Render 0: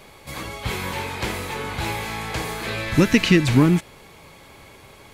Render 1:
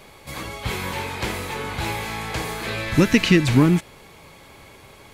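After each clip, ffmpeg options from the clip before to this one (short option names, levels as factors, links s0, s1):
-af anull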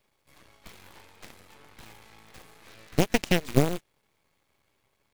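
-filter_complex "[0:a]acrossover=split=360|3000[s0][s1][s2];[s1]acompressor=threshold=0.0355:ratio=2[s3];[s0][s3][s2]amix=inputs=3:normalize=0,acrusher=bits=6:dc=4:mix=0:aa=0.000001,aeval=exprs='0.668*(cos(1*acos(clip(val(0)/0.668,-1,1)))-cos(1*PI/2))+0.237*(cos(3*acos(clip(val(0)/0.668,-1,1)))-cos(3*PI/2))+0.0473*(cos(4*acos(clip(val(0)/0.668,-1,1)))-cos(4*PI/2))':c=same"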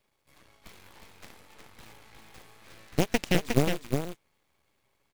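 -af "aecho=1:1:360:0.562,volume=0.75"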